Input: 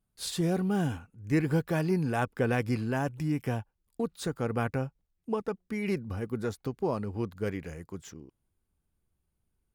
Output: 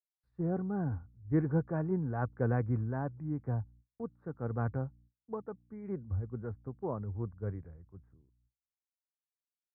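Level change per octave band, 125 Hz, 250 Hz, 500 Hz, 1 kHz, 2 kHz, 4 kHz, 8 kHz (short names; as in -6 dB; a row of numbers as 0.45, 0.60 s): -1.5 dB, -5.5 dB, -6.5 dB, -6.5 dB, -11.5 dB, under -40 dB, under -35 dB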